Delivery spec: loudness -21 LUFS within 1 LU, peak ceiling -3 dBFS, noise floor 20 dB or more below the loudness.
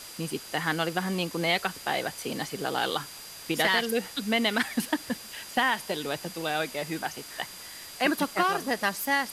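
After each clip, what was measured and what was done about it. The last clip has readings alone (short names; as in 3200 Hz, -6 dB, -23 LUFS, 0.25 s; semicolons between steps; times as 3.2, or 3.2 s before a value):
steady tone 4800 Hz; tone level -47 dBFS; noise floor -44 dBFS; noise floor target -49 dBFS; loudness -28.5 LUFS; peak -12.0 dBFS; loudness target -21.0 LUFS
-> notch 4800 Hz, Q 30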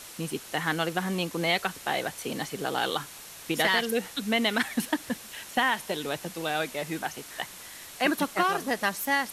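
steady tone none; noise floor -45 dBFS; noise floor target -49 dBFS
-> denoiser 6 dB, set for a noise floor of -45 dBFS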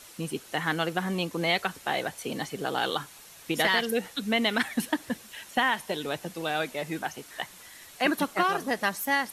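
noise floor -50 dBFS; loudness -29.0 LUFS; peak -12.0 dBFS; loudness target -21.0 LUFS
-> gain +8 dB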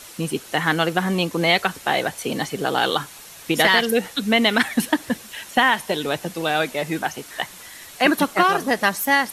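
loudness -21.0 LUFS; peak -4.0 dBFS; noise floor -42 dBFS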